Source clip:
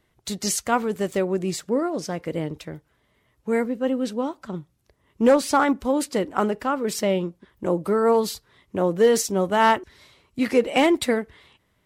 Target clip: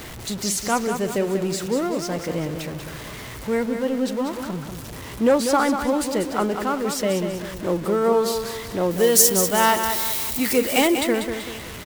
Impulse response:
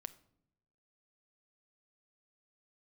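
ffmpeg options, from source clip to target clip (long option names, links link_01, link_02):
-filter_complex "[0:a]aeval=exprs='val(0)+0.5*0.0335*sgn(val(0))':channel_layout=same,asettb=1/sr,asplit=3[link_01][link_02][link_03];[link_01]atrim=end=8.914[link_04];[link_02]atrim=start=8.91:end=10.88,asetpts=PTS-STARTPTS,afade=type=in:duration=0.004:curve=qsin,afade=type=out:start_time=1.966:duration=0.004:curve=qsin,aemphasis=mode=production:type=75fm[link_05];[link_03]atrim=start=10.876[link_06];[link_04][link_05]acrossfade=duration=0.004:curve1=hsin:curve2=qsin[link_07];[link_07][link_06]acrossfade=duration=0.004:curve1=qsin:curve2=hsin,asplit=2[link_08][link_09];[link_09]aecho=0:1:192|384|576|768|960:0.422|0.177|0.0744|0.0312|0.0131[link_10];[link_08][link_10]amix=inputs=2:normalize=0,volume=-1.5dB"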